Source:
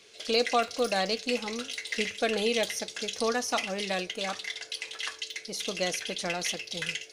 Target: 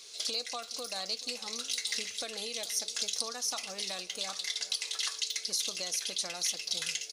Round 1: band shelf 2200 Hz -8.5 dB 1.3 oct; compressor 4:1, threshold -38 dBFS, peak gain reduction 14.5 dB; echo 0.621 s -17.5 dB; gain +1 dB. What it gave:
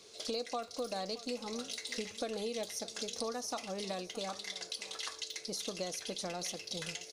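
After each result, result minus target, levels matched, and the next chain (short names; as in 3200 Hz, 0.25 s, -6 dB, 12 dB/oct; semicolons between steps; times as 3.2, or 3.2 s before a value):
echo 0.19 s late; 1000 Hz band +8.0 dB
band shelf 2200 Hz -8.5 dB 1.3 oct; compressor 4:1, threshold -38 dBFS, peak gain reduction 14.5 dB; echo 0.431 s -17.5 dB; gain +1 dB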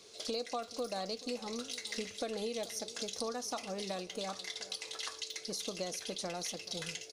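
1000 Hz band +8.0 dB
band shelf 2200 Hz -8.5 dB 1.3 oct; compressor 4:1, threshold -38 dBFS, peak gain reduction 14.5 dB; tilt shelf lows -9.5 dB, about 1100 Hz; echo 0.431 s -17.5 dB; gain +1 dB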